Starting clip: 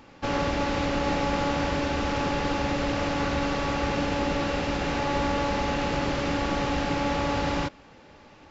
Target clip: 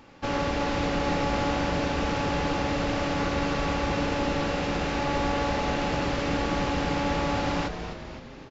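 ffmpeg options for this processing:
ffmpeg -i in.wav -filter_complex "[0:a]asplit=8[link_01][link_02][link_03][link_04][link_05][link_06][link_07][link_08];[link_02]adelay=257,afreqshift=-110,volume=-9dB[link_09];[link_03]adelay=514,afreqshift=-220,volume=-13.7dB[link_10];[link_04]adelay=771,afreqshift=-330,volume=-18.5dB[link_11];[link_05]adelay=1028,afreqshift=-440,volume=-23.2dB[link_12];[link_06]adelay=1285,afreqshift=-550,volume=-27.9dB[link_13];[link_07]adelay=1542,afreqshift=-660,volume=-32.7dB[link_14];[link_08]adelay=1799,afreqshift=-770,volume=-37.4dB[link_15];[link_01][link_09][link_10][link_11][link_12][link_13][link_14][link_15]amix=inputs=8:normalize=0,volume=-1dB" out.wav

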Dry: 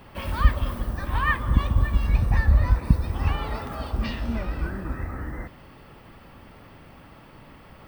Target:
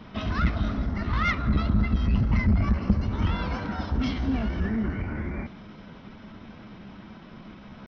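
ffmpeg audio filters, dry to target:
ffmpeg -i in.wav -af "aresample=11025,asoftclip=type=tanh:threshold=-17.5dB,aresample=44100,equalizer=frequency=180:width_type=o:width=0.5:gain=12.5,asetrate=50951,aresample=44100,atempo=0.865537" out.wav

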